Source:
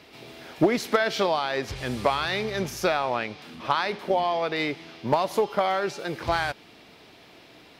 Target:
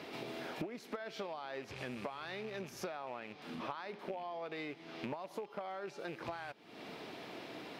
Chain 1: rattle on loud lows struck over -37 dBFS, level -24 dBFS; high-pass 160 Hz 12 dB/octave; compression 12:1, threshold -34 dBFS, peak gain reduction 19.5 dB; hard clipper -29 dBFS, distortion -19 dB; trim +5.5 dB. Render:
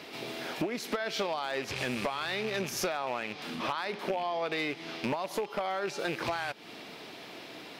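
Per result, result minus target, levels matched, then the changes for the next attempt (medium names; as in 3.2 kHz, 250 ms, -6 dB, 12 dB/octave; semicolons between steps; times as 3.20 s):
compression: peak gain reduction -10 dB; 4 kHz band +2.5 dB
change: compression 12:1, threshold -45.5 dBFS, peak gain reduction 30 dB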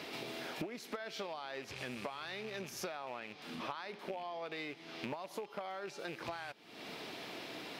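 4 kHz band +3.5 dB
add after high-pass: treble shelf 2.2 kHz -8 dB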